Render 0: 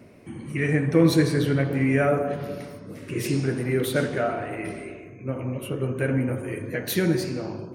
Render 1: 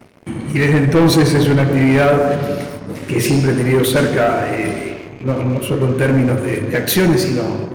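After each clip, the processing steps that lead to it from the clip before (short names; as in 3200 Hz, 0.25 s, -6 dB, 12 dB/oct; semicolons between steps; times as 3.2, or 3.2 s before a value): sample leveller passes 3; gain +1.5 dB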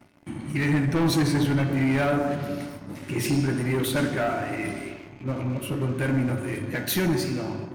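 bell 460 Hz -11 dB 0.27 oct; resonator 290 Hz, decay 0.42 s, harmonics odd, mix 70%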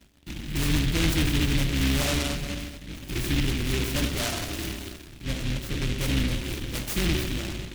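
octaver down 2 oct, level +2 dB; noise-modulated delay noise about 2600 Hz, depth 0.29 ms; gain -4 dB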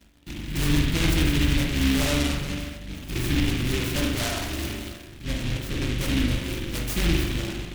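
reverb, pre-delay 41 ms, DRR 3 dB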